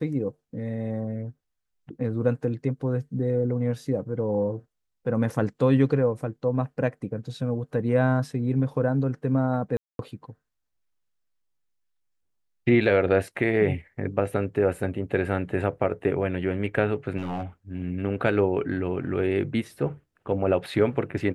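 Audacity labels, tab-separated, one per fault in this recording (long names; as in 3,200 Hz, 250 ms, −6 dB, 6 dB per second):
9.770000	9.990000	drop-out 222 ms
17.170000	17.430000	clipping −25 dBFS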